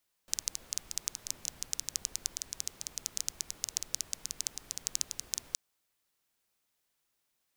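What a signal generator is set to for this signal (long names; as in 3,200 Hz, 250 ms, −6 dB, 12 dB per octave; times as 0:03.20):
rain-like ticks over hiss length 5.27 s, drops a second 11, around 6,200 Hz, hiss −16 dB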